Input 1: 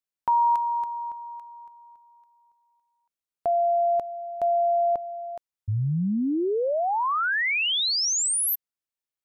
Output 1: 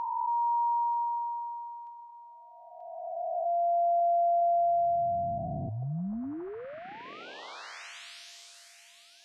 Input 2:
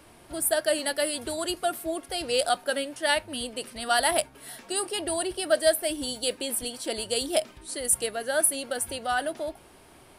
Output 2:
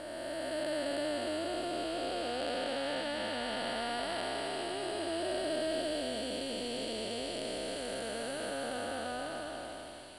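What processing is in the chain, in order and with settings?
time blur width 1.04 s; air absorption 92 m; thin delay 0.935 s, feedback 61%, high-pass 2500 Hz, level -8.5 dB; gain +1 dB

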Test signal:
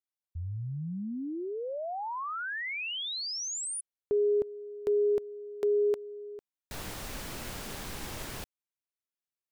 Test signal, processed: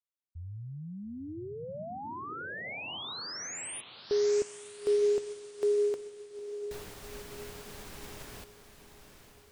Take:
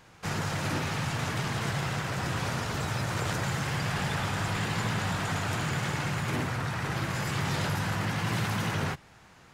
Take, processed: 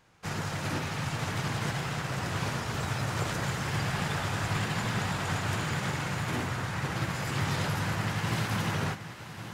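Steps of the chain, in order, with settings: on a send: diffused feedback echo 0.915 s, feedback 47%, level -7.5 dB; on the sum: upward expander 1.5:1, over -42 dBFS

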